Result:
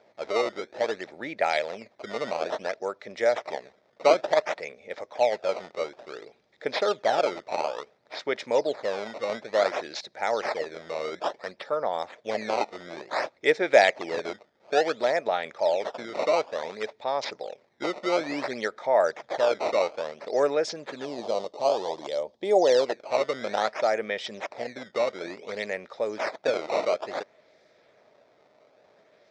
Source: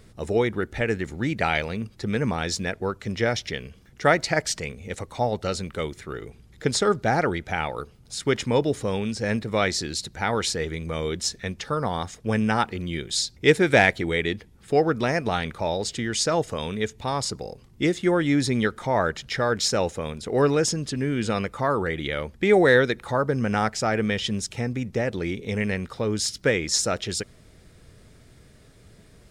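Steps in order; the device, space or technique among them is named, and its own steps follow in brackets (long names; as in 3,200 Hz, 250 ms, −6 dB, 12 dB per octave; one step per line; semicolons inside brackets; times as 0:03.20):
circuit-bent sampling toy (sample-and-hold swept by an LFO 15×, swing 160% 0.57 Hz; loudspeaker in its box 560–4,900 Hz, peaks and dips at 600 Hz +9 dB, 1,100 Hz −5 dB, 1,500 Hz −5 dB, 2,900 Hz −10 dB, 4,400 Hz −3 dB)
0:21.05–0:22.86: flat-topped bell 1,800 Hz −13 dB 1.2 octaves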